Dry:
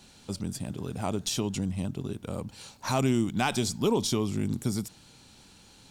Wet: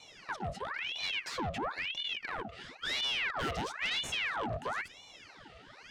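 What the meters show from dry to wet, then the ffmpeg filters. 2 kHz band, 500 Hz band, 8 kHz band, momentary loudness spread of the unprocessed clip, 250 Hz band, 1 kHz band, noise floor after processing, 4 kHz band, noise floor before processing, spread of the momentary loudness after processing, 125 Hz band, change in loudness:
+5.5 dB, −10.0 dB, −13.0 dB, 12 LU, −17.0 dB, −2.5 dB, −56 dBFS, +2.5 dB, −55 dBFS, 20 LU, −14.5 dB, −5.0 dB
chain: -filter_complex "[0:a]asplit=3[link_01][link_02][link_03];[link_01]bandpass=frequency=300:width_type=q:width=8,volume=0dB[link_04];[link_02]bandpass=frequency=870:width_type=q:width=8,volume=-6dB[link_05];[link_03]bandpass=frequency=2240:width_type=q:width=8,volume=-9dB[link_06];[link_04][link_05][link_06]amix=inputs=3:normalize=0,asplit=2[link_07][link_08];[link_08]highpass=frequency=720:poles=1,volume=30dB,asoftclip=type=tanh:threshold=-24.5dB[link_09];[link_07][link_09]amix=inputs=2:normalize=0,lowpass=frequency=4100:poles=1,volume=-6dB,aeval=exprs='val(0)*sin(2*PI*1800*n/s+1800*0.8/0.99*sin(2*PI*0.99*n/s))':channel_layout=same"

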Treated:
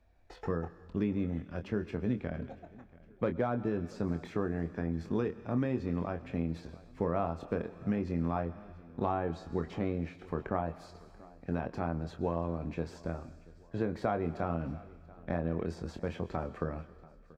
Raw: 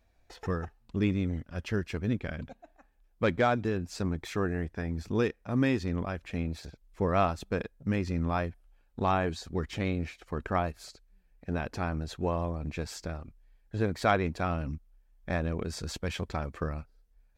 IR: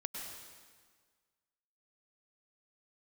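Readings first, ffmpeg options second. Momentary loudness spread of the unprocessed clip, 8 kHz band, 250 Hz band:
12 LU, below −15 dB, −2.0 dB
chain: -filter_complex "[0:a]asplit=2[link_01][link_02];[link_02]adelay=24,volume=-8dB[link_03];[link_01][link_03]amix=inputs=2:normalize=0,asplit=2[link_04][link_05];[1:a]atrim=start_sample=2205,highshelf=frequency=4000:gain=11.5[link_06];[link_05][link_06]afir=irnorm=-1:irlink=0,volume=-17dB[link_07];[link_04][link_07]amix=inputs=2:normalize=0,acrossover=split=130|1200[link_08][link_09][link_10];[link_08]acompressor=threshold=-46dB:ratio=4[link_11];[link_09]acompressor=threshold=-28dB:ratio=4[link_12];[link_10]acompressor=threshold=-48dB:ratio=4[link_13];[link_11][link_12][link_13]amix=inputs=3:normalize=0,lowpass=frequency=2000:poles=1,aecho=1:1:685|1370|2055:0.0794|0.0357|0.0161"

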